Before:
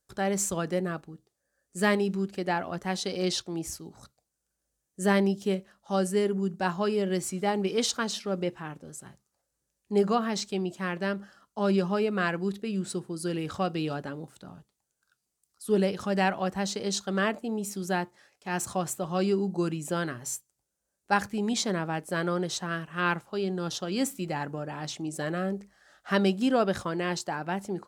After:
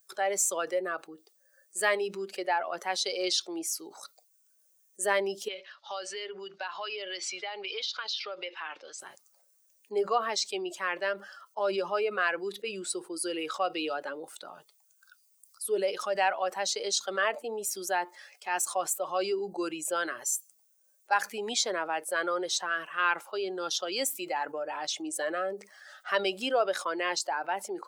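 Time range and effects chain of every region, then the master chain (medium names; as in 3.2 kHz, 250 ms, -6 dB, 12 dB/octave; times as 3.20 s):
5.48–9.00 s: low-pass 4.4 kHz 24 dB/octave + tilt EQ +4 dB/octave + compression 10:1, threshold -35 dBFS
whole clip: expander on every frequency bin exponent 1.5; high-pass 460 Hz 24 dB/octave; level flattener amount 50%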